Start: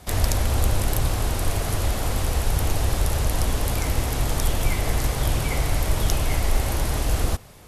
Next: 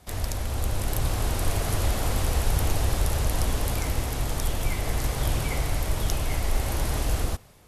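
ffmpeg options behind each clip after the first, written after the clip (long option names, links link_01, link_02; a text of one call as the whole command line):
ffmpeg -i in.wav -af "dynaudnorm=framelen=180:gausssize=7:maxgain=8dB,volume=-8dB" out.wav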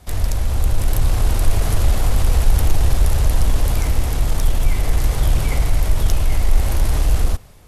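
ffmpeg -i in.wav -filter_complex "[0:a]lowshelf=frequency=64:gain=12,asplit=2[link_01][link_02];[link_02]asoftclip=type=tanh:threshold=-18.5dB,volume=-3dB[link_03];[link_01][link_03]amix=inputs=2:normalize=0" out.wav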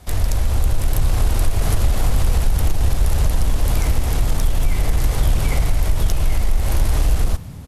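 ffmpeg -i in.wav -filter_complex "[0:a]acompressor=threshold=-13dB:ratio=6,asplit=6[link_01][link_02][link_03][link_04][link_05][link_06];[link_02]adelay=337,afreqshift=50,volume=-22.5dB[link_07];[link_03]adelay=674,afreqshift=100,volume=-26.8dB[link_08];[link_04]adelay=1011,afreqshift=150,volume=-31.1dB[link_09];[link_05]adelay=1348,afreqshift=200,volume=-35.4dB[link_10];[link_06]adelay=1685,afreqshift=250,volume=-39.7dB[link_11];[link_01][link_07][link_08][link_09][link_10][link_11]amix=inputs=6:normalize=0,volume=2dB" out.wav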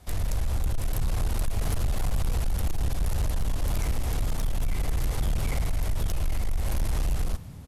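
ffmpeg -i in.wav -af "volume=13dB,asoftclip=hard,volume=-13dB,volume=-8dB" out.wav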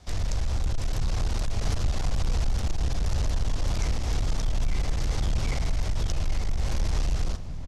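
ffmpeg -i in.wav -filter_complex "[0:a]lowpass=frequency=5800:width_type=q:width=1.8,asplit=2[link_01][link_02];[link_02]adelay=1283,volume=-10dB,highshelf=frequency=4000:gain=-28.9[link_03];[link_01][link_03]amix=inputs=2:normalize=0" out.wav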